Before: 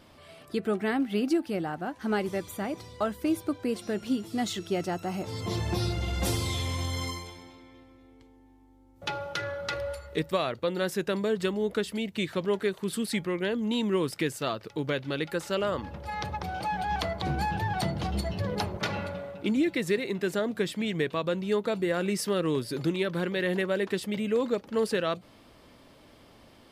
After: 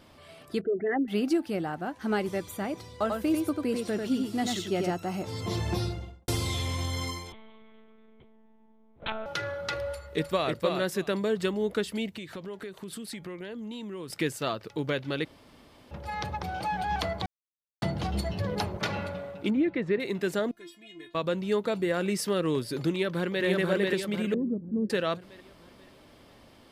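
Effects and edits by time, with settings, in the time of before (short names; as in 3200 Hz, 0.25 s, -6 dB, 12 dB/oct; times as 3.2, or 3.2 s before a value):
0.61–1.08 formant sharpening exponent 3
2.91–4.92 echo 93 ms -4 dB
5.69–6.28 studio fade out
7.32–9.26 monotone LPC vocoder at 8 kHz 220 Hz
9.88–10.5 echo throw 0.31 s, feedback 15%, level -4.5 dB
12.11–14.1 compressor, threshold -36 dBFS
15.25–15.91 room tone
17.26–17.82 mute
19.5–20 LPF 1900 Hz
20.51–21.15 metallic resonator 340 Hz, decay 0.24 s, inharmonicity 0.002
22.91–23.44 echo throw 0.49 s, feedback 45%, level -1 dB
24.34–24.9 synth low-pass 230 Hz, resonance Q 1.8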